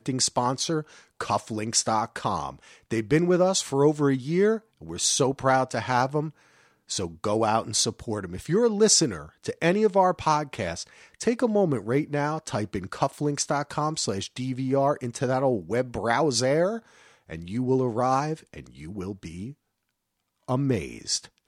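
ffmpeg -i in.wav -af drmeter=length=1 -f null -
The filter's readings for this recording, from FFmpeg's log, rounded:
Channel 1: DR: 12.0
Overall DR: 12.0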